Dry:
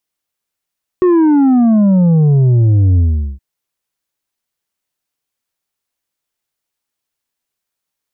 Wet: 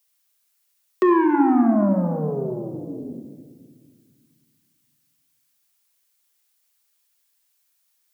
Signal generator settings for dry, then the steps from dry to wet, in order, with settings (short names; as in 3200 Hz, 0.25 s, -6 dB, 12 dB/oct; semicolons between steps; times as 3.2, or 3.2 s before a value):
sub drop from 370 Hz, over 2.37 s, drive 5.5 dB, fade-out 0.41 s, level -7.5 dB
Bessel high-pass 310 Hz, order 8; tilt +3 dB/oct; shoebox room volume 2200 m³, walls mixed, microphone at 1.3 m